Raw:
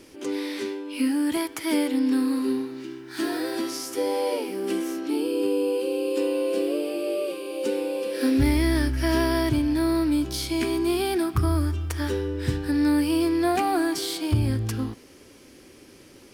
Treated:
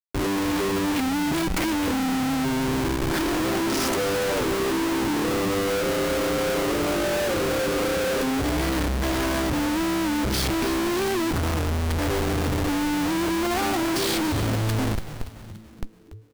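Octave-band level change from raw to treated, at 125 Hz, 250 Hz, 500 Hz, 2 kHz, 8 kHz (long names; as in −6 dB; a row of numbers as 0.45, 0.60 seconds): +1.0, −0.5, +1.0, +6.0, +5.5 decibels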